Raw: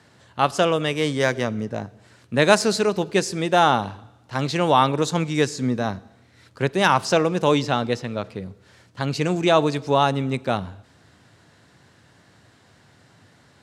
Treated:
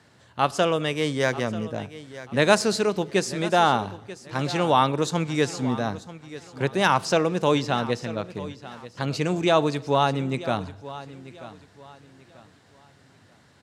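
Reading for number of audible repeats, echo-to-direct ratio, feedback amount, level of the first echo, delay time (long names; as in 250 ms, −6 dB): 2, −15.5 dB, 31%, −16.0 dB, 938 ms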